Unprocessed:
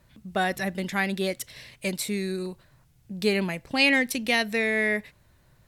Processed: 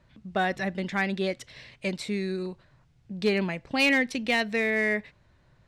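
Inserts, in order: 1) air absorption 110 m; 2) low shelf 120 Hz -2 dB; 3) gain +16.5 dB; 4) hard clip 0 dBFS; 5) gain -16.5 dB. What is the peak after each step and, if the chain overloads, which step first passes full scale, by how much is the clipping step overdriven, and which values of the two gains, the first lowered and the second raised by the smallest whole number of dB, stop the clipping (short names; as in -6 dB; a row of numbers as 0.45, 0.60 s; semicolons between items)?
-11.5, -11.5, +5.0, 0.0, -16.5 dBFS; step 3, 5.0 dB; step 3 +11.5 dB, step 5 -11.5 dB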